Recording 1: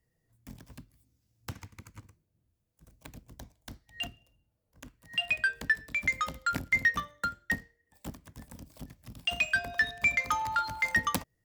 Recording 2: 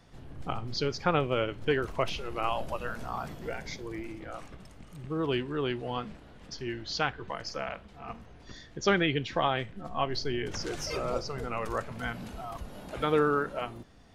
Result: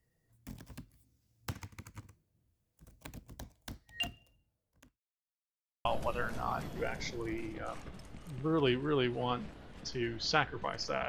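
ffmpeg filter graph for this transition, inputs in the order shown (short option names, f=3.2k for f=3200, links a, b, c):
-filter_complex "[0:a]apad=whole_dur=11.08,atrim=end=11.08,asplit=2[a][b];[a]atrim=end=5,asetpts=PTS-STARTPTS,afade=t=out:st=4.24:d=0.76[c];[b]atrim=start=5:end=5.85,asetpts=PTS-STARTPTS,volume=0[d];[1:a]atrim=start=2.51:end=7.74,asetpts=PTS-STARTPTS,afade=t=in:d=0.004:c=hsin[e];[c][d][e]concat=n=3:v=0:a=1"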